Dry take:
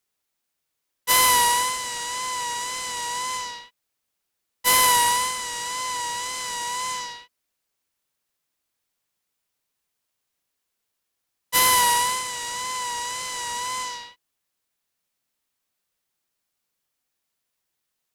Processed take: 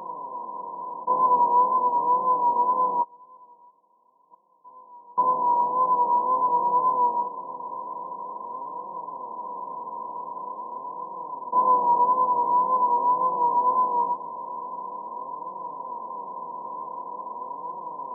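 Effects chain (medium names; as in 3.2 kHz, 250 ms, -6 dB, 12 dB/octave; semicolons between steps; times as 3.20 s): spectral levelling over time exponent 0.2; tilt EQ +2 dB/octave; de-hum 287.2 Hz, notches 22; 3.02–5.18 s: inverted gate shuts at -11 dBFS, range -28 dB; flange 0.45 Hz, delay 5.3 ms, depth 8.5 ms, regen +20%; brick-wall FIR band-pass 150–1100 Hz; trim +3 dB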